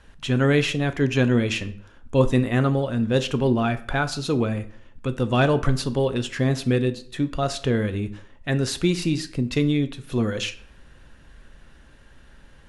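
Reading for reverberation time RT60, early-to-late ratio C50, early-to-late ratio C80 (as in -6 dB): 0.60 s, 16.0 dB, 19.5 dB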